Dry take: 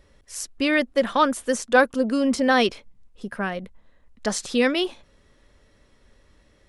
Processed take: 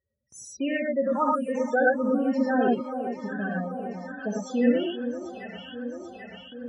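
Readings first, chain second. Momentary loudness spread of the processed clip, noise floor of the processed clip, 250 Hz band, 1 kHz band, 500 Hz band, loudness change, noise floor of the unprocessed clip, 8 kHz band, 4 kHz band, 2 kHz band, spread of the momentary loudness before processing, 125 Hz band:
16 LU, −54 dBFS, −1.0 dB, −3.5 dB, −2.5 dB, −4.0 dB, −60 dBFS, below −10 dB, −13.0 dB, −6.0 dB, 15 LU, +1.5 dB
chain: spectral peaks only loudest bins 8
low-shelf EQ 120 Hz +9.5 dB
delay that swaps between a low-pass and a high-pass 394 ms, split 970 Hz, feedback 76%, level −11.5 dB
noise gate with hold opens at −37 dBFS
reverb whose tail is shaped and stops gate 130 ms rising, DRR −2 dB
in parallel at −2 dB: downward compressor, threshold −29 dBFS, peak gain reduction 19.5 dB
on the sum: high-pass filter 89 Hz 24 dB per octave
high-shelf EQ 5,700 Hz −10.5 dB
one half of a high-frequency compander encoder only
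level −8.5 dB

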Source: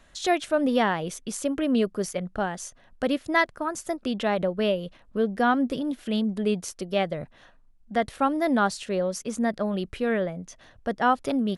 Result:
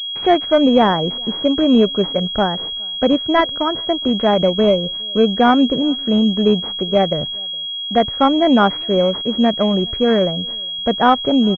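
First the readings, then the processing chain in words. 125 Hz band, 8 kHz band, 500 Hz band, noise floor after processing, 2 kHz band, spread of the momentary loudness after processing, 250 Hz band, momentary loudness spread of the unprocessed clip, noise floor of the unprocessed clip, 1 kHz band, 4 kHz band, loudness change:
+11.0 dB, below −10 dB, +10.5 dB, −26 dBFS, +3.5 dB, 7 LU, +10.5 dB, 9 LU, −57 dBFS, +9.0 dB, +20.0 dB, +10.5 dB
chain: in parallel at −5 dB: hard clipping −17 dBFS, distortion −16 dB
on the sum: noise gate −45 dBFS, range −41 dB
high-frequency loss of the air 120 metres
slap from a distant wall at 71 metres, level −29 dB
switching amplifier with a slow clock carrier 3,300 Hz
level +7 dB

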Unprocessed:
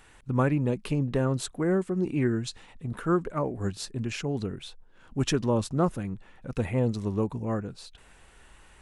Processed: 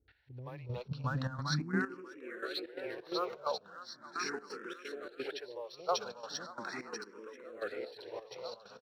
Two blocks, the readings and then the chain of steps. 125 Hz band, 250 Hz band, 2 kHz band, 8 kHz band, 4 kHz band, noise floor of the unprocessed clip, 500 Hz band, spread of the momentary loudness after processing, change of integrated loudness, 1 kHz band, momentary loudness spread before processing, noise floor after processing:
−13.0 dB, −15.0 dB, −1.5 dB, −9.0 dB, −2.0 dB, −56 dBFS, −10.0 dB, 12 LU, −11.0 dB, −4.5 dB, 13 LU, −60 dBFS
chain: on a send: feedback echo with a long and a short gap by turns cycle 986 ms, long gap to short 1.5 to 1, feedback 53%, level −7 dB
on the sum: high-pass filter sweep 70 Hz → 460 Hz, 0:01.27–0:02.06
Chebyshev low-pass with heavy ripple 5,800 Hz, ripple 9 dB
parametric band 1,400 Hz +4 dB 0.22 octaves
multiband delay without the direct sound lows, highs 80 ms, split 430 Hz
in parallel at −8 dB: dead-zone distortion −49.5 dBFS
on the sum: high-shelf EQ 2,800 Hz +9 dB
gate pattern "x.....xx.xx.xx." 130 BPM −12 dB
frequency shifter mixed with the dry sound +0.39 Hz
level −1.5 dB

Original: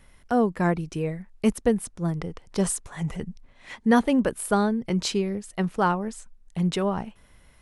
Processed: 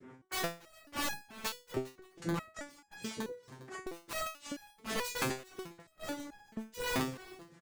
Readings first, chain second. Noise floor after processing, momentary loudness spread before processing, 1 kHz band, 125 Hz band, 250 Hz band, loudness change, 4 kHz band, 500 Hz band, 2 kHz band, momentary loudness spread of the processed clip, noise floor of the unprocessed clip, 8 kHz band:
−66 dBFS, 12 LU, −13.5 dB, −17.0 dB, −18.0 dB, −14.0 dB, −5.0 dB, −15.0 dB, −6.5 dB, 13 LU, −56 dBFS, −9.0 dB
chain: gain on a spectral selection 0:04.27–0:07.05, 440–1,800 Hz −26 dB
low-pass that shuts in the quiet parts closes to 770 Hz, open at −21.5 dBFS
in parallel at +1.5 dB: brickwall limiter −19.5 dBFS, peak gain reduction 11.5 dB
on the sum: all-pass phaser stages 2, 2.2 Hz, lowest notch 200–3,300 Hz
cochlear-implant simulation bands 3
wrap-around overflow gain 17.5 dB
gate pattern "x..xxx....x.x" 102 BPM −12 dB
slap from a distant wall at 55 metres, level −17 dB
gate with flip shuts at −25 dBFS, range −36 dB
on a send: single-tap delay 406 ms −21.5 dB
on the sum: step-sequenced resonator 4.6 Hz 130–830 Hz
level +15.5 dB

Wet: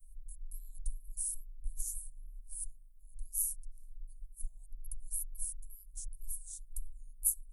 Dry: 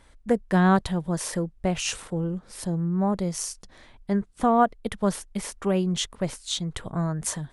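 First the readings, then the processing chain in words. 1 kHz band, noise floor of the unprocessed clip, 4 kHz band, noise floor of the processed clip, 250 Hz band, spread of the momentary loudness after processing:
below −40 dB, −55 dBFS, below −30 dB, −54 dBFS, below −40 dB, 20 LU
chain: tape wow and flutter 86 cents
inverse Chebyshev band-stop filter 180–2,600 Hz, stop band 80 dB
level +9.5 dB

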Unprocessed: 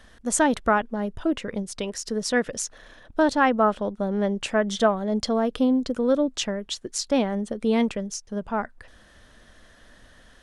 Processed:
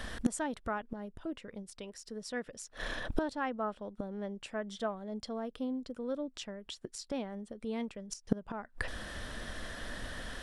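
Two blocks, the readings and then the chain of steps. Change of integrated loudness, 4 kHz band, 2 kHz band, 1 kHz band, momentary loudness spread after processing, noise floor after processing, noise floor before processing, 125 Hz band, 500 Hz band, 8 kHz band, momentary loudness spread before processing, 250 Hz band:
−15.0 dB, −12.5 dB, −11.5 dB, −15.0 dB, 9 LU, −63 dBFS, −54 dBFS, can't be measured, −15.0 dB, −15.0 dB, 11 LU, −13.5 dB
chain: notch filter 6,400 Hz, Q 11
gate with flip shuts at −26 dBFS, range −26 dB
level +10.5 dB

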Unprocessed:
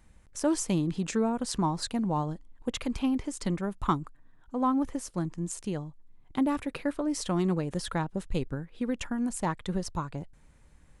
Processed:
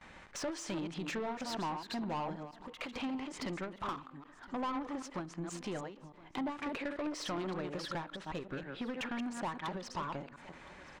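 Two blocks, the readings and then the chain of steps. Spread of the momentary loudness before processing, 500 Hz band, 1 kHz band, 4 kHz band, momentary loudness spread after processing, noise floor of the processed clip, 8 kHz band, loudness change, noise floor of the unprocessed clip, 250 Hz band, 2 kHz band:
10 LU, −7.0 dB, −5.5 dB, −4.0 dB, 9 LU, −57 dBFS, −11.0 dB, −8.5 dB, −58 dBFS, −10.5 dB, −1.0 dB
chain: delay that plays each chunk backwards 157 ms, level −8 dB
noise gate with hold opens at −55 dBFS
low-pass filter 4,700 Hz 12 dB per octave
low-shelf EQ 190 Hz −5 dB
notch filter 480 Hz, Q 14
downward compressor 3 to 1, threshold −47 dBFS, peak gain reduction 18.5 dB
mid-hump overdrive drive 24 dB, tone 3,300 Hz, clips at −28 dBFS
single-tap delay 1,017 ms −20.5 dB
spring reverb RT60 1.1 s, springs 30/48 ms, chirp 50 ms, DRR 19 dB
every ending faded ahead of time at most 130 dB per second

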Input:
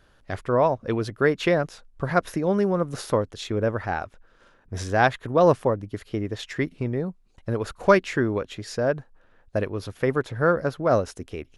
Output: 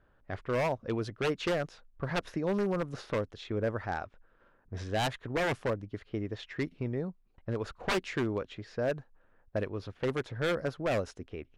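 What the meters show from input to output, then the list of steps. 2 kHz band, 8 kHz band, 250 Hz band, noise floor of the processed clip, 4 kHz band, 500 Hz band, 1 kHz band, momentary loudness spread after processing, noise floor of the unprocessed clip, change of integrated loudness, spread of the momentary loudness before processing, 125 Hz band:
−8.0 dB, −8.0 dB, −8.5 dB, −66 dBFS, −3.5 dB, −10.0 dB, −11.0 dB, 10 LU, −59 dBFS, −9.5 dB, 13 LU, −8.0 dB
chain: wave folding −16 dBFS
low-pass that shuts in the quiet parts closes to 1,700 Hz, open at −19 dBFS
level −7 dB

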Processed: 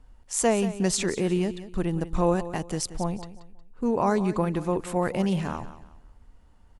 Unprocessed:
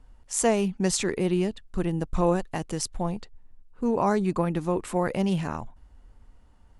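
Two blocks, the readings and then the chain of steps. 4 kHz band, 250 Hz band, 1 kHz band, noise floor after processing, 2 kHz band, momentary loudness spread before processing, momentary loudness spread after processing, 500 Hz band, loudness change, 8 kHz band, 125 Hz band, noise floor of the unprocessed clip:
0.0 dB, 0.0 dB, 0.0 dB, −54 dBFS, 0.0 dB, 8 LU, 8 LU, 0.0 dB, 0.0 dB, 0.0 dB, 0.0 dB, −56 dBFS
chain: repeating echo 181 ms, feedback 30%, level −14 dB

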